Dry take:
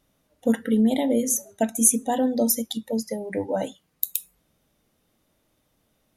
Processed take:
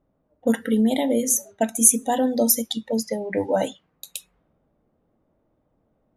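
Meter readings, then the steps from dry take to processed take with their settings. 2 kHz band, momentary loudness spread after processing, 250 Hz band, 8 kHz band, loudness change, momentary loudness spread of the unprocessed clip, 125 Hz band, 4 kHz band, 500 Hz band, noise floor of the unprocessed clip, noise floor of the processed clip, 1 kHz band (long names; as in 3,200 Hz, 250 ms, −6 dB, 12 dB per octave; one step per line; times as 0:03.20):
+4.0 dB, 15 LU, +0.5 dB, +3.0 dB, +2.5 dB, 11 LU, +0.5 dB, +4.0 dB, +2.5 dB, −71 dBFS, −70 dBFS, +3.0 dB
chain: low-pass that shuts in the quiet parts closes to 750 Hz, open at −22 dBFS
low-shelf EQ 450 Hz −4.5 dB
in parallel at −1 dB: speech leveller 2 s
on the sum: level −2 dB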